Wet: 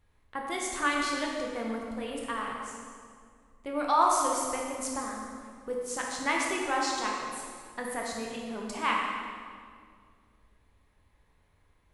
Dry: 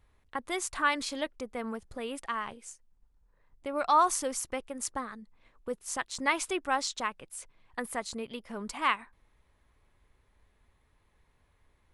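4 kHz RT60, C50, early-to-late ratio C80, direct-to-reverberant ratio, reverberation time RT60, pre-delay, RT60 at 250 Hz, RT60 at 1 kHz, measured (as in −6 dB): 1.6 s, 0.5 dB, 2.0 dB, −2.0 dB, 2.1 s, 12 ms, 2.6 s, 1.9 s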